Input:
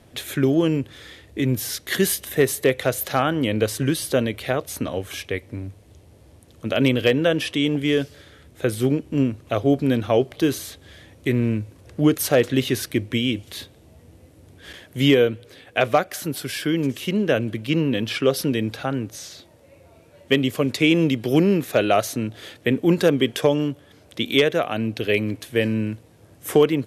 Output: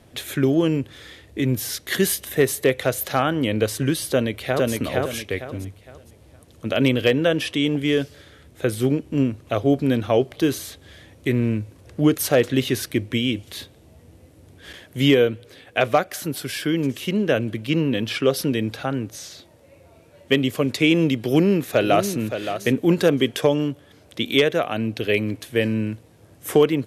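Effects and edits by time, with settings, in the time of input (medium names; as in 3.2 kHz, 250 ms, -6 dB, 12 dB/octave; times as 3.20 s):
4.10–4.72 s: echo throw 460 ms, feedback 30%, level -1.5 dB
21.16–22.18 s: echo throw 570 ms, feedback 15%, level -9 dB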